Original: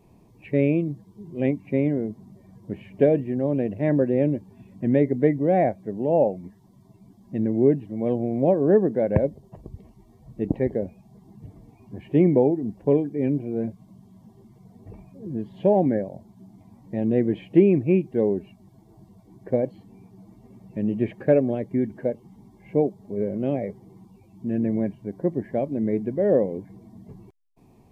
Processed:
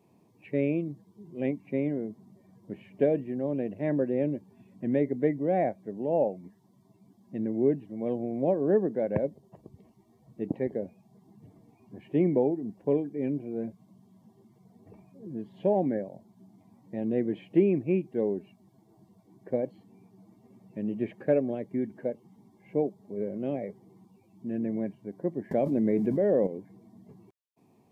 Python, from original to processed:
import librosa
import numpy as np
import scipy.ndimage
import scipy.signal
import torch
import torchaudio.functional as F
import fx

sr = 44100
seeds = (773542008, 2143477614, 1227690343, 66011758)

y = scipy.signal.sosfilt(scipy.signal.butter(2, 150.0, 'highpass', fs=sr, output='sos'), x)
y = fx.env_flatten(y, sr, amount_pct=70, at=(25.51, 26.47))
y = y * librosa.db_to_amplitude(-6.0)